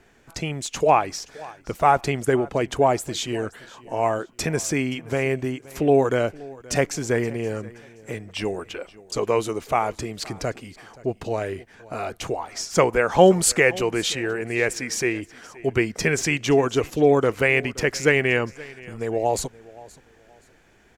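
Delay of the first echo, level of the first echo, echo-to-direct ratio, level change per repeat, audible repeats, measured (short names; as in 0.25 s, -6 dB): 0.524 s, -21.0 dB, -20.5 dB, -11.0 dB, 2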